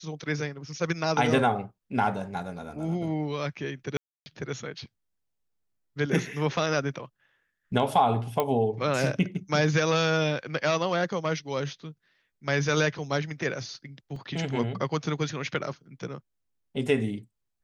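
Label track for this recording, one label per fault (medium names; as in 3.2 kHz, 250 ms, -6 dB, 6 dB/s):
3.970000	4.260000	dropout 290 ms
8.400000	8.400000	pop -12 dBFS
14.160000	14.160000	dropout 3.3 ms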